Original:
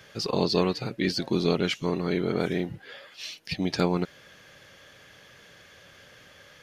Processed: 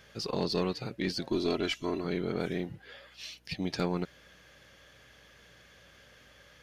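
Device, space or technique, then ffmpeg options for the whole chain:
valve amplifier with mains hum: -filter_complex "[0:a]asettb=1/sr,asplit=3[a][b][c];[a]atrim=end=1.304[d];[b]atrim=start=1.3:end=2.05,asetpts=PTS-STARTPTS,afade=t=in:d=0.004:c=qsin,afade=t=out:st=0.746:d=0.004:c=qsin,aecho=1:1:3:0.63,atrim=end_sample=33075[e];[c]atrim=start=2.046[f];[d][e]acrossfade=d=0.004:c1=hsin:c2=qsin[g];[g][f]acrossfade=d=0.004:c1=qsin:c2=hsin,aeval=exprs='(tanh(5.01*val(0)+0.25)-tanh(0.25))/5.01':c=same,aeval=exprs='val(0)+0.000891*(sin(2*PI*60*n/s)+sin(2*PI*2*60*n/s)/2+sin(2*PI*3*60*n/s)/3+sin(2*PI*4*60*n/s)/4+sin(2*PI*5*60*n/s)/5)':c=same,volume=-5dB"

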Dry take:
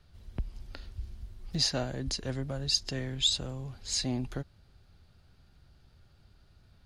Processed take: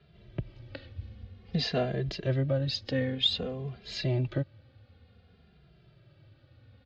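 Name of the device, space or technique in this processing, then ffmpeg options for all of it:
barber-pole flanger into a guitar amplifier: -filter_complex "[0:a]asplit=2[a][b];[b]adelay=2.5,afreqshift=-0.53[c];[a][c]amix=inputs=2:normalize=1,asoftclip=type=tanh:threshold=-19dB,highpass=100,equalizer=f=110:t=q:w=4:g=5,equalizer=f=510:t=q:w=4:g=6,equalizer=f=930:t=q:w=4:g=-9,equalizer=f=1.4k:t=q:w=4:g=-4,lowpass=f=3.6k:w=0.5412,lowpass=f=3.6k:w=1.3066,volume=8dB"

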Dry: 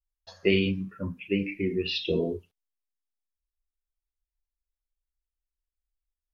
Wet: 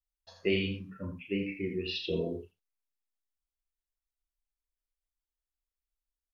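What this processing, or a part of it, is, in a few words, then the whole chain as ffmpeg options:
slapback doubling: -filter_complex "[0:a]asplit=3[a][b][c];[b]adelay=34,volume=-7dB[d];[c]adelay=82,volume=-8dB[e];[a][d][e]amix=inputs=3:normalize=0,volume=-6.5dB"

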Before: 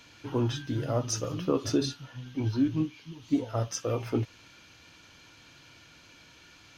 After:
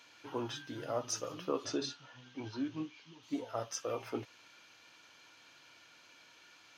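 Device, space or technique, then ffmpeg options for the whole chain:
filter by subtraction: -filter_complex "[0:a]asettb=1/sr,asplit=3[a][b][c];[a]atrim=end=1.654[d];[b]atrim=start=1.65:end=3.23,asetpts=PTS-STARTPTS,afade=t=in:d=0.004:c=qsin,afade=t=out:st=1.576:d=0.004:c=qsin,lowpass=f=7.6k:w=0.5412,lowpass=f=7.6k:w=1.3066[e];[c]atrim=start=3.226[f];[d][e]acrossfade=d=0.004:c1=hsin:c2=qsin[g];[g][f]acrossfade=d=0.004:c1=qsin:c2=hsin,asplit=2[h][i];[i]lowpass=790,volume=-1[j];[h][j]amix=inputs=2:normalize=0,volume=-5.5dB"

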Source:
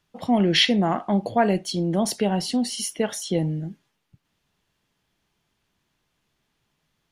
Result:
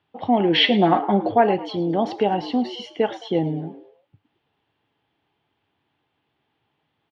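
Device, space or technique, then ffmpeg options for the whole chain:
frequency-shifting delay pedal into a guitar cabinet: -filter_complex "[0:a]asettb=1/sr,asplit=3[a][b][c];[a]atrim=end=0.624[d];[b]atrim=start=0.62:end=1.32,asetpts=PTS-STARTPTS,afade=t=in:d=0.004:c=qsin,afade=t=out:st=0.696:d=0.004:c=qsin,aecho=1:1:5.5:0.91,atrim=end_sample=30870[e];[c]atrim=start=1.316[f];[d][e]acrossfade=d=0.004:c1=hsin:c2=qsin[g];[g][f]acrossfade=d=0.004:c1=qsin:c2=hsin,asplit=4[h][i][j][k];[i]adelay=108,afreqshift=120,volume=-17dB[l];[j]adelay=216,afreqshift=240,volume=-25dB[m];[k]adelay=324,afreqshift=360,volume=-32.9dB[n];[h][l][m][n]amix=inputs=4:normalize=0,highpass=100,equalizer=f=100:t=q:w=4:g=7,equalizer=f=190:t=q:w=4:g=-6,equalizer=f=300:t=q:w=4:g=6,equalizer=f=440:t=q:w=4:g=4,equalizer=f=810:t=q:w=4:g=9,equalizer=f=3.1k:t=q:w=4:g=3,lowpass=f=3.5k:w=0.5412,lowpass=f=3.5k:w=1.3066"

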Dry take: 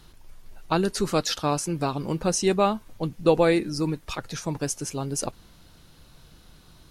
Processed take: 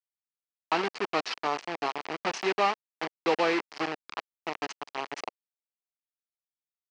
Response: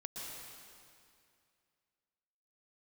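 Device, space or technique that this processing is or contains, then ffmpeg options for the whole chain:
hand-held game console: -af "acrusher=bits=3:mix=0:aa=0.000001,highpass=480,equalizer=f=550:t=q:w=4:g=-9,equalizer=f=1.5k:t=q:w=4:g=-5,equalizer=f=3.6k:t=q:w=4:g=-9,lowpass=f=4.2k:w=0.5412,lowpass=f=4.2k:w=1.3066"

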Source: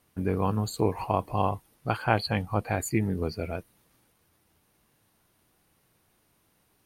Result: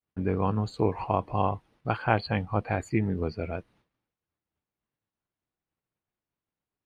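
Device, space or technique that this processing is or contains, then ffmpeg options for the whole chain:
hearing-loss simulation: -af "lowpass=3.4k,agate=range=-33dB:threshold=-56dB:ratio=3:detection=peak"

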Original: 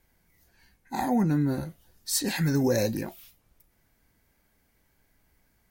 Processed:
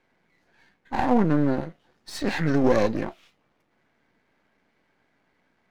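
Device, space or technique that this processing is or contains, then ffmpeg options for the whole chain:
crystal radio: -af "highpass=210,lowpass=2.6k,aeval=exprs='if(lt(val(0),0),0.251*val(0),val(0))':c=same,volume=8.5dB"

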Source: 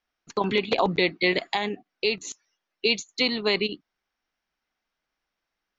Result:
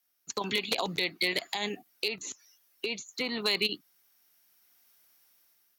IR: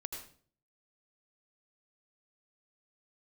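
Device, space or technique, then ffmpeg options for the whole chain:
FM broadcast chain: -filter_complex "[0:a]highpass=f=69:w=0.5412,highpass=f=69:w=1.3066,dynaudnorm=f=410:g=5:m=12.5dB,acrossover=split=720|1900[a][b][c];[a]acompressor=threshold=-28dB:ratio=4[d];[b]acompressor=threshold=-30dB:ratio=4[e];[c]acompressor=threshold=-27dB:ratio=4[f];[d][e][f]amix=inputs=3:normalize=0,aemphasis=mode=production:type=50fm,alimiter=limit=-12dB:level=0:latency=1:release=178,asoftclip=type=hard:threshold=-15.5dB,lowpass=f=15k:w=0.5412,lowpass=f=15k:w=1.3066,aemphasis=mode=production:type=50fm,asettb=1/sr,asplit=3[g][h][i];[g]atrim=end=2.084[j];[h]atrim=start=2.08:end=3.43,asetpts=PTS-STARTPTS,afade=t=in:d=0.004:c=qsin,afade=t=out:st=1.346:d=0.004:c=qsin,acrossover=split=2600[k][l];[l]acompressor=threshold=-36dB:ratio=4:attack=1:release=60[m];[k][m]amix=inputs=2:normalize=0[n];[i]atrim=start=3.426[o];[j][n]acrossfade=d=0.004:c1=hsin:c2=qsin[p];[p][o]acrossfade=d=0.004:c1=qsin:c2=hsin,volume=-5dB"

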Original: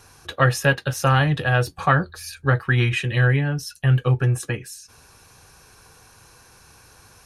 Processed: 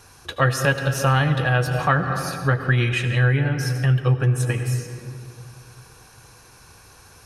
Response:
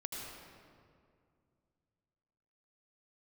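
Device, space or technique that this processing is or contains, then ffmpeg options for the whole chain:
ducked reverb: -filter_complex "[0:a]asplit=3[a][b][c];[1:a]atrim=start_sample=2205[d];[b][d]afir=irnorm=-1:irlink=0[e];[c]apad=whole_len=319839[f];[e][f]sidechaincompress=threshold=-23dB:ratio=5:attack=16:release=190,volume=-0.5dB[g];[a][g]amix=inputs=2:normalize=0,volume=-3dB"

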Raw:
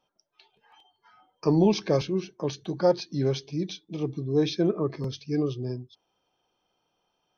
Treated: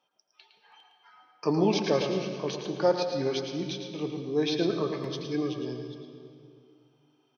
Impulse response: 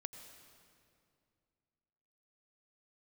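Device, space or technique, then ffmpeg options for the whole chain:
PA in a hall: -filter_complex "[0:a]highpass=170,equalizer=f=2.1k:t=o:w=3:g=6.5,aecho=1:1:110:0.398[a];[1:a]atrim=start_sample=2205[b];[a][b]afir=irnorm=-1:irlink=0"

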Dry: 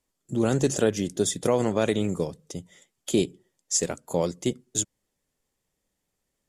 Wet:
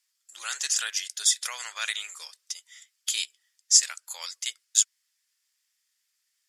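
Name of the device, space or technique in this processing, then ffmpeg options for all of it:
headphones lying on a table: -af "highpass=f=1.5k:w=0.5412,highpass=f=1.5k:w=1.3066,equalizer=f=5k:t=o:w=0.45:g=7,volume=5dB"

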